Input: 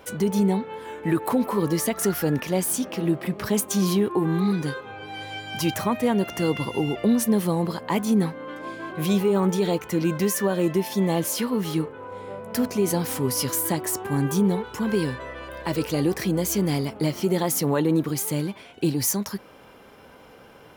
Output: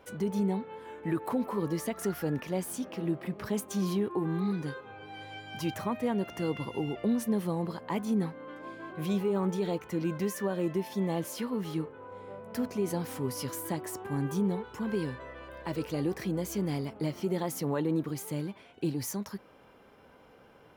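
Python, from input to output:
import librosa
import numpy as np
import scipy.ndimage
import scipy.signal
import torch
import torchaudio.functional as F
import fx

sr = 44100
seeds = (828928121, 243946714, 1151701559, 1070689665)

y = fx.high_shelf(x, sr, hz=3500.0, db=-7.0)
y = y * librosa.db_to_amplitude(-8.0)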